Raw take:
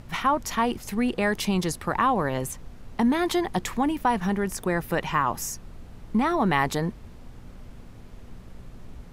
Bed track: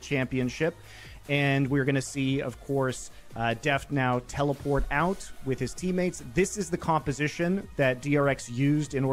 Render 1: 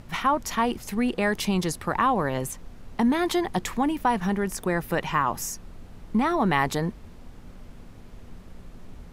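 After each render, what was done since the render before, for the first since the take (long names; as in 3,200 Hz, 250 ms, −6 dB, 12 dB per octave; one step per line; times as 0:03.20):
hum removal 60 Hz, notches 2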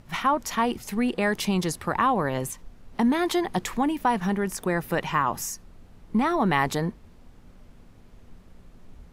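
noise reduction from a noise print 6 dB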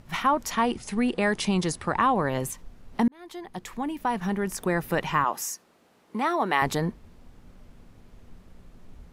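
0:00.51–0:02.29: linear-phase brick-wall low-pass 11,000 Hz
0:03.08–0:04.66: fade in
0:05.24–0:06.62: high-pass filter 360 Hz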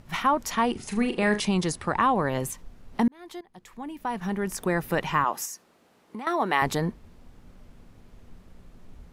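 0:00.72–0:01.40: flutter between parallel walls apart 6.6 metres, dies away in 0.28 s
0:03.41–0:04.52: fade in, from −18 dB
0:05.45–0:06.27: downward compressor, threshold −33 dBFS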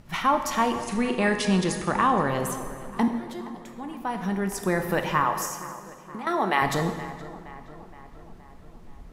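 feedback echo with a low-pass in the loop 470 ms, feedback 62%, low-pass 2,700 Hz, level −16 dB
dense smooth reverb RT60 1.6 s, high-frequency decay 0.8×, DRR 5.5 dB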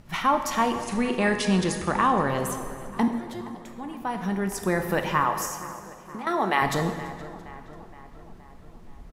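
echo with shifted repeats 336 ms, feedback 54%, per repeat −120 Hz, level −24 dB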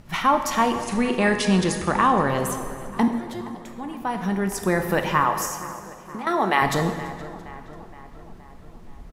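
level +3 dB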